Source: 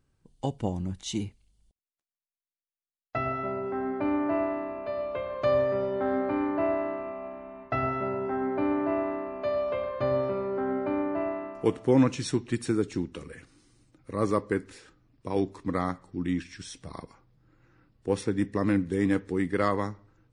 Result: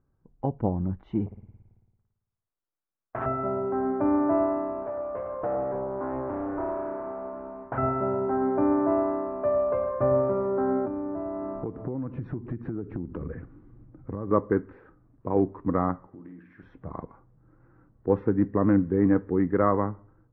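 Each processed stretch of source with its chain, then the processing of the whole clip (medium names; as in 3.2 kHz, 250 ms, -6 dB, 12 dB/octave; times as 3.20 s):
1.26–3.26 s: flutter echo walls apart 9.6 m, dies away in 1.2 s + transformer saturation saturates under 2 kHz
4.82–7.78 s: compression 2:1, threshold -36 dBFS + loudspeaker Doppler distortion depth 0.7 ms
10.85–14.31 s: bass shelf 330 Hz +10 dB + compression 12:1, threshold -32 dBFS
16.07–16.63 s: high-pass 320 Hz 6 dB/octave + compression 12:1, threshold -45 dBFS + flutter echo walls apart 8.7 m, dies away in 0.44 s
whole clip: low-pass 1.4 kHz 24 dB/octave; level rider gain up to 4 dB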